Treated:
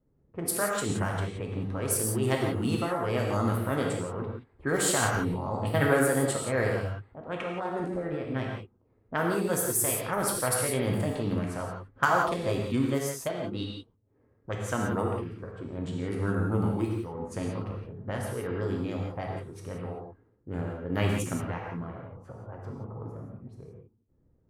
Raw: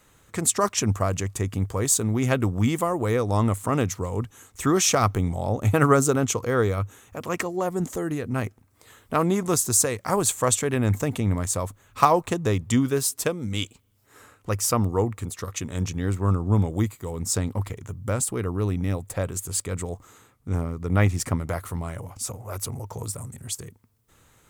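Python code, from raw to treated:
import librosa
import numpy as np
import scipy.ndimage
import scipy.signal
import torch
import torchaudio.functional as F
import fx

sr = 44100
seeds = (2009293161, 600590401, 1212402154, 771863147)

y = fx.formant_shift(x, sr, semitones=4)
y = fx.env_lowpass(y, sr, base_hz=350.0, full_db=-18.0)
y = fx.rev_gated(y, sr, seeds[0], gate_ms=200, shape='flat', drr_db=-1.0)
y = y * librosa.db_to_amplitude(-8.0)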